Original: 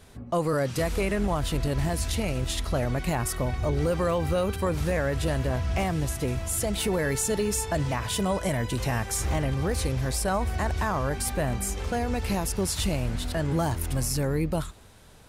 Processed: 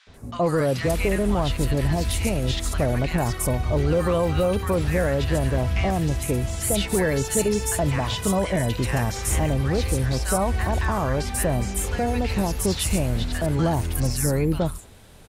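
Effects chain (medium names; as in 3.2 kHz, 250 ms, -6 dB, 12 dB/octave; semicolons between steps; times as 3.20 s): three bands offset in time mids, lows, highs 70/140 ms, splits 1.2/5.8 kHz; trim +4.5 dB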